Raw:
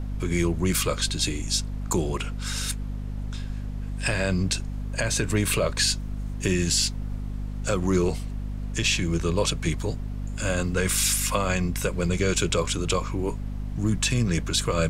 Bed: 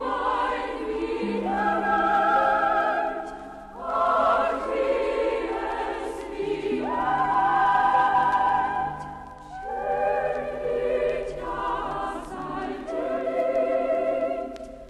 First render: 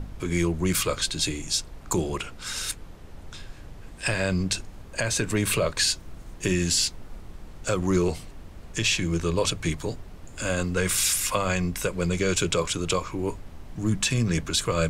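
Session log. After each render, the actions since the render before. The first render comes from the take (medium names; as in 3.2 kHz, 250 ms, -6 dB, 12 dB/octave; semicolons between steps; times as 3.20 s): de-hum 50 Hz, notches 5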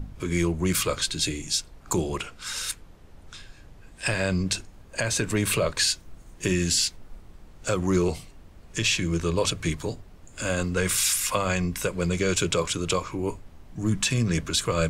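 noise print and reduce 6 dB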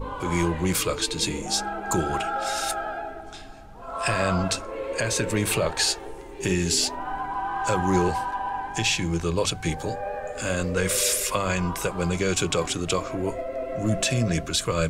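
add bed -7.5 dB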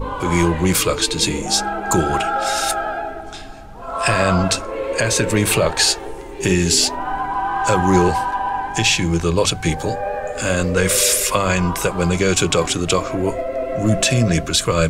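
trim +7.5 dB; peak limiter -3 dBFS, peak gain reduction 1 dB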